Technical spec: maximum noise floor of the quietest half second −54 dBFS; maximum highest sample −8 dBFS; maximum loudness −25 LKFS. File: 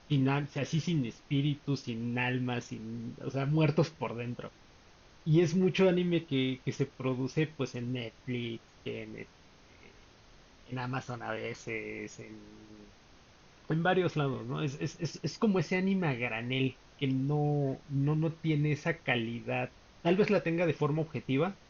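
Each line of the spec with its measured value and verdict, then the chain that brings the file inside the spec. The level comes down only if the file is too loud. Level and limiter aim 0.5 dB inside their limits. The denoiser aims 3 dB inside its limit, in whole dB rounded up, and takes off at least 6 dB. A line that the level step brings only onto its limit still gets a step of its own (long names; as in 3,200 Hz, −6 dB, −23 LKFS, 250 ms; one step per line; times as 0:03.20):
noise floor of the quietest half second −58 dBFS: in spec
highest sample −14.0 dBFS: in spec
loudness −32.5 LKFS: in spec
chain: no processing needed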